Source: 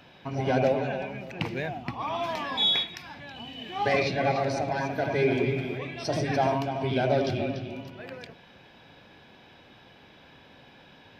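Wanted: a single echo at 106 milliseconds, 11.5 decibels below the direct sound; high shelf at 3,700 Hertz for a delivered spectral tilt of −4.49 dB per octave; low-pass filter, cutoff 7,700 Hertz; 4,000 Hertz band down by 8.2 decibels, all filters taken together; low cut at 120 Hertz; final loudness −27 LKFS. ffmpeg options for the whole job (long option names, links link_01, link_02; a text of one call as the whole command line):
ffmpeg -i in.wav -af "highpass=120,lowpass=7700,highshelf=frequency=3700:gain=-6.5,equalizer=frequency=4000:width_type=o:gain=-6,aecho=1:1:106:0.266,volume=2dB" out.wav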